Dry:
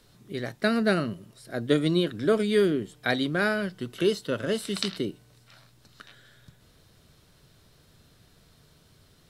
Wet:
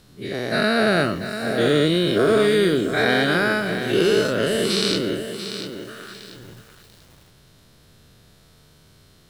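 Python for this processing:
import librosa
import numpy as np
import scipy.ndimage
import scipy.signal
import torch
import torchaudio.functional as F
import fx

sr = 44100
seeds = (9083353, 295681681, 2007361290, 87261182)

y = fx.spec_dilate(x, sr, span_ms=240)
y = fx.echo_crushed(y, sr, ms=691, feedback_pct=35, bits=7, wet_db=-9)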